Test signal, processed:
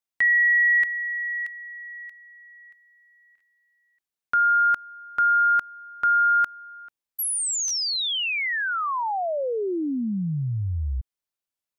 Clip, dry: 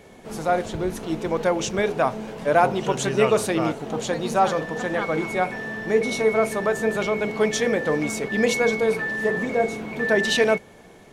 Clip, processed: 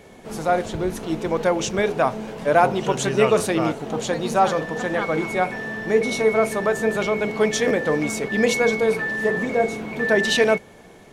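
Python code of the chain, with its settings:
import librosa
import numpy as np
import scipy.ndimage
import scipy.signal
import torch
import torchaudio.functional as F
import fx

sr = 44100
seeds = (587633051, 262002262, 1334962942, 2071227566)

y = fx.buffer_glitch(x, sr, at_s=(3.37, 7.67), block=512, repeats=2)
y = y * librosa.db_to_amplitude(1.5)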